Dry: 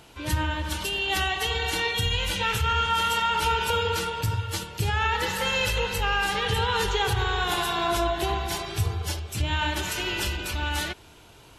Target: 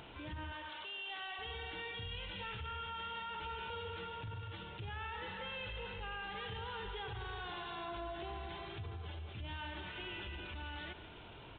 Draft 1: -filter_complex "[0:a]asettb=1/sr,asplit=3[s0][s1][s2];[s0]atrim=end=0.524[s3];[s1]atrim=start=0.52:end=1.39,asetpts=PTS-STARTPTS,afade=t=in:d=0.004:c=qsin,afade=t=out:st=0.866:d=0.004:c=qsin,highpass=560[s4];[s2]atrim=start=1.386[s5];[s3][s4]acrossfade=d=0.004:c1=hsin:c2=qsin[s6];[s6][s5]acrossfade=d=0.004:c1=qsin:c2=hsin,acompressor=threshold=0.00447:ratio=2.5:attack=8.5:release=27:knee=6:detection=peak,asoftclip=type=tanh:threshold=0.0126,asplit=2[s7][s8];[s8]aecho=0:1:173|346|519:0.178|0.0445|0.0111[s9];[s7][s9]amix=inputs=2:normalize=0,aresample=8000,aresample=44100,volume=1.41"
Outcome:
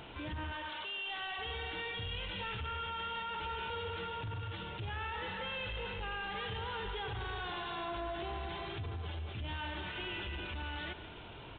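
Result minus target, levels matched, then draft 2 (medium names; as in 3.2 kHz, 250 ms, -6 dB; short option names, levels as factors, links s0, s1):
compression: peak gain reduction -6.5 dB
-filter_complex "[0:a]asettb=1/sr,asplit=3[s0][s1][s2];[s0]atrim=end=0.524[s3];[s1]atrim=start=0.52:end=1.39,asetpts=PTS-STARTPTS,afade=t=in:d=0.004:c=qsin,afade=t=out:st=0.866:d=0.004:c=qsin,highpass=560[s4];[s2]atrim=start=1.386[s5];[s3][s4]acrossfade=d=0.004:c1=hsin:c2=qsin[s6];[s6][s5]acrossfade=d=0.004:c1=qsin:c2=hsin,acompressor=threshold=0.00133:ratio=2.5:attack=8.5:release=27:knee=6:detection=peak,asoftclip=type=tanh:threshold=0.0126,asplit=2[s7][s8];[s8]aecho=0:1:173|346|519:0.178|0.0445|0.0111[s9];[s7][s9]amix=inputs=2:normalize=0,aresample=8000,aresample=44100,volume=1.41"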